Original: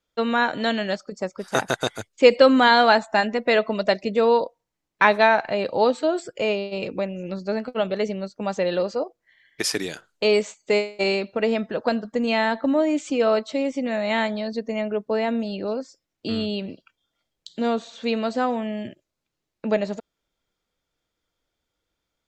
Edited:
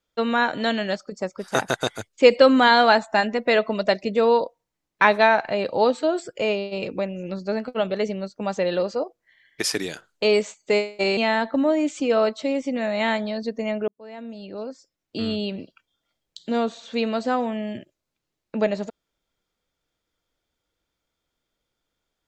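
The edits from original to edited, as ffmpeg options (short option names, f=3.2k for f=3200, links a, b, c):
-filter_complex "[0:a]asplit=3[a][b][c];[a]atrim=end=11.172[d];[b]atrim=start=12.268:end=14.98,asetpts=PTS-STARTPTS,afade=t=out:st=2.708:d=0.004:c=hsin[e];[c]atrim=start=14.98,asetpts=PTS-STARTPTS,afade=t=in:d=1.45[f];[e][f]concat=n=2:v=0:a=1[g];[d][g]acrossfade=d=0.004:c1=hsin:c2=hsin"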